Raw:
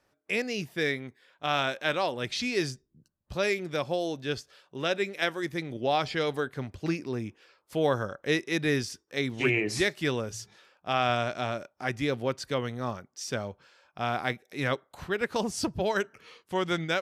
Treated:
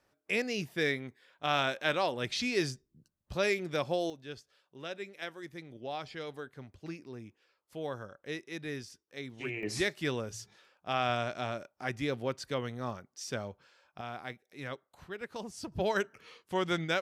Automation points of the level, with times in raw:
−2 dB
from 0:04.10 −12.5 dB
from 0:09.63 −4.5 dB
from 0:14.01 −12 dB
from 0:15.72 −2.5 dB

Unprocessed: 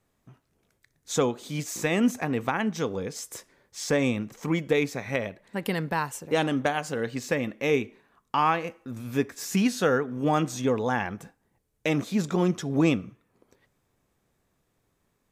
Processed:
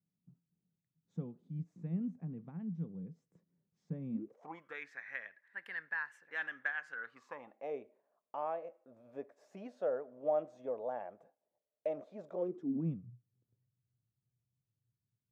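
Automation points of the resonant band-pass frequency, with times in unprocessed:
resonant band-pass, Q 8.9
0:04.09 170 Hz
0:04.34 530 Hz
0:04.80 1,700 Hz
0:06.87 1,700 Hz
0:07.77 610 Hz
0:12.33 610 Hz
0:13.06 120 Hz

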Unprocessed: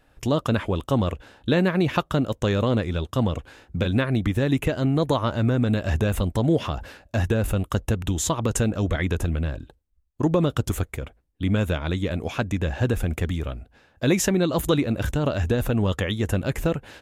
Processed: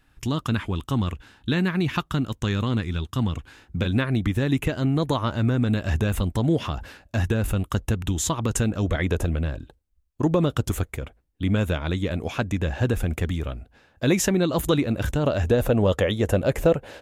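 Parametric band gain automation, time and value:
parametric band 560 Hz 0.88 octaves
0:03.37 −13.5 dB
0:03.79 −4.5 dB
0:08.71 −4.5 dB
0:09.17 +6.5 dB
0:09.50 −0.5 dB
0:15.03 −0.5 dB
0:15.75 +9 dB

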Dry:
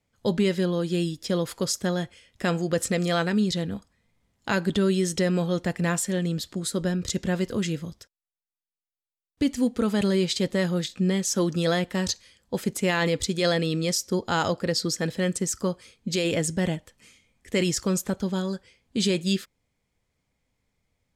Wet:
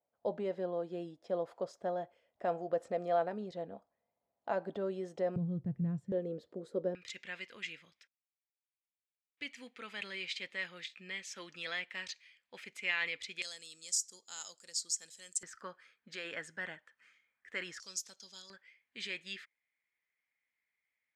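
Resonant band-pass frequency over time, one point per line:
resonant band-pass, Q 3.7
670 Hz
from 0:05.36 130 Hz
from 0:06.12 490 Hz
from 0:06.95 2,300 Hz
from 0:13.42 7,400 Hz
from 0:15.43 1,600 Hz
from 0:17.80 5,400 Hz
from 0:18.50 2,000 Hz

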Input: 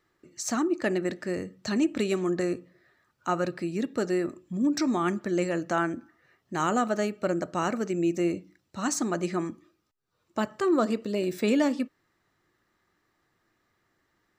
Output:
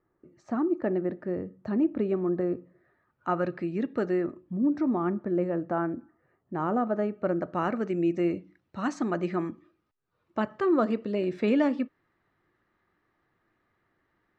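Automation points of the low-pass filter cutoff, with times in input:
0:02.47 1,000 Hz
0:03.53 2,200 Hz
0:04.04 2,200 Hz
0:04.62 1,000 Hz
0:06.79 1,000 Hz
0:07.91 2,500 Hz

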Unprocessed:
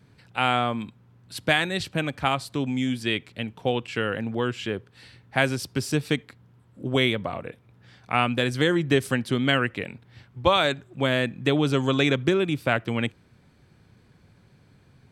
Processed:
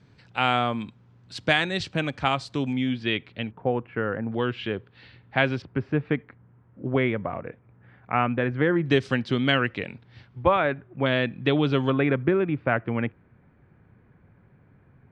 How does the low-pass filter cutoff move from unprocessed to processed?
low-pass filter 24 dB per octave
6,800 Hz
from 0:02.73 3,900 Hz
from 0:03.51 1,700 Hz
from 0:04.32 3,800 Hz
from 0:05.62 2,100 Hz
from 0:08.86 5,300 Hz
from 0:10.44 2,200 Hz
from 0:11.06 3,900 Hz
from 0:11.90 2,100 Hz

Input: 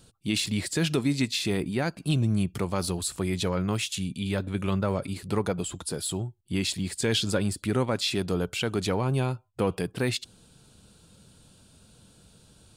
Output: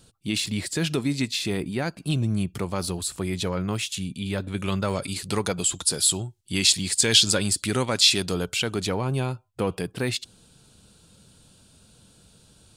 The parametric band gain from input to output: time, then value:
parametric band 6,400 Hz 2.9 octaves
0:04.31 +1.5 dB
0:04.95 +13.5 dB
0:08.14 +13.5 dB
0:08.94 +2.5 dB

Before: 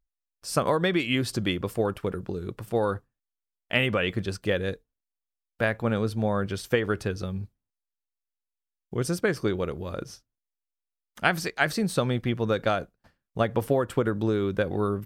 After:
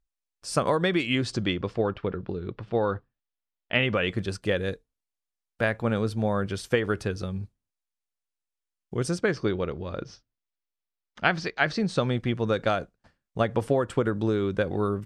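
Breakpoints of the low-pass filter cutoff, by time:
low-pass filter 24 dB per octave
0:01.00 10,000 Hz
0:01.93 4,200 Hz
0:03.72 4,200 Hz
0:04.21 11,000 Hz
0:08.97 11,000 Hz
0:09.46 5,300 Hz
0:11.69 5,300 Hz
0:12.23 9,300 Hz

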